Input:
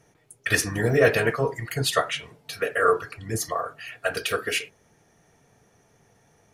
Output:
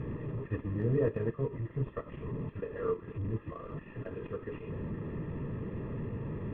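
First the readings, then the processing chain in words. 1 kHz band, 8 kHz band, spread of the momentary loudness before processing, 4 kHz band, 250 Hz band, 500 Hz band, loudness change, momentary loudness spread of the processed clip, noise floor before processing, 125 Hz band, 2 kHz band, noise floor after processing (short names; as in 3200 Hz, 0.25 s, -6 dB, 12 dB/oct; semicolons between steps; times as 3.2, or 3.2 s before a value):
-19.0 dB, under -40 dB, 12 LU, under -30 dB, -3.0 dB, -10.5 dB, -12.0 dB, 10 LU, -62 dBFS, -2.5 dB, -24.0 dB, -51 dBFS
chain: delta modulation 16 kbps, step -22.5 dBFS; running mean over 59 samples; transient shaper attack -2 dB, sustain -8 dB; gain -3.5 dB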